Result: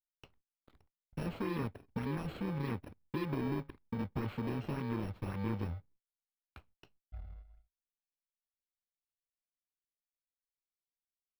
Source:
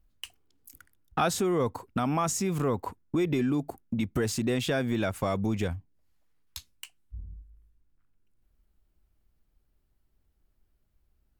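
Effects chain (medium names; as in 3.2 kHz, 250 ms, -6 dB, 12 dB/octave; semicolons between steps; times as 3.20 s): bit-reversed sample order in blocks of 64 samples; gate -56 dBFS, range -41 dB; graphic EQ with 31 bands 630 Hz -5 dB, 1.6 kHz -4 dB, 12.5 kHz +3 dB; in parallel at -8 dB: decimation with a swept rate 23×, swing 160% 1.8 Hz; on the sum: distance through air 420 m; trim -8 dB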